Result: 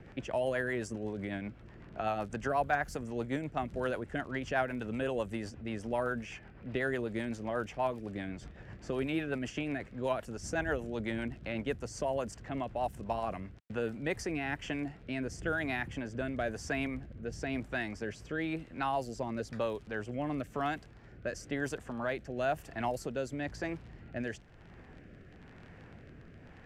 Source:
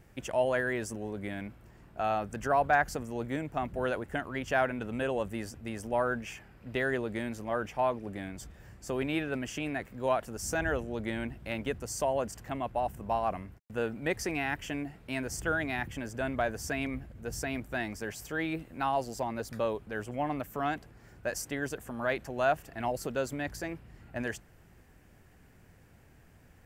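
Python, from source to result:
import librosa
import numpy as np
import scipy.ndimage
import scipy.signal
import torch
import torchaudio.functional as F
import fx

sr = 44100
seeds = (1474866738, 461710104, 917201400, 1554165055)

y = fx.dmg_crackle(x, sr, seeds[0], per_s=29.0, level_db=-43.0)
y = fx.rotary_switch(y, sr, hz=8.0, then_hz=1.0, switch_at_s=13.5)
y = fx.env_lowpass(y, sr, base_hz=2600.0, full_db=-28.5)
y = fx.band_squash(y, sr, depth_pct=40)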